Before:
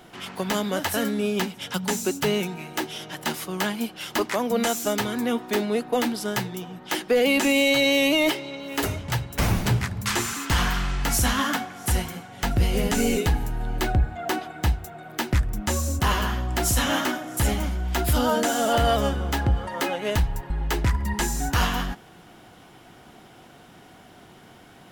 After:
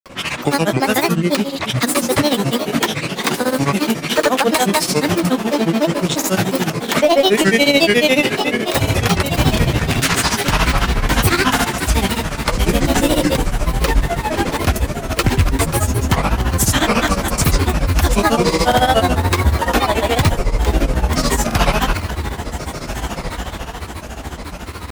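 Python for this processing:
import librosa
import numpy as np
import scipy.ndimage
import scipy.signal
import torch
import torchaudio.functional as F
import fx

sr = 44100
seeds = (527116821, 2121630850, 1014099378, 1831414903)

p1 = fx.reverse_delay(x, sr, ms=232, wet_db=-13)
p2 = fx.over_compress(p1, sr, threshold_db=-29.0, ratio=-1.0)
p3 = p1 + (p2 * 10.0 ** (-3.0 / 20.0))
p4 = fx.echo_diffused(p3, sr, ms=1571, feedback_pct=50, wet_db=-9.5)
p5 = fx.granulator(p4, sr, seeds[0], grain_ms=100.0, per_s=14.0, spray_ms=100.0, spread_st=7)
y = p5 * 10.0 ** (8.0 / 20.0)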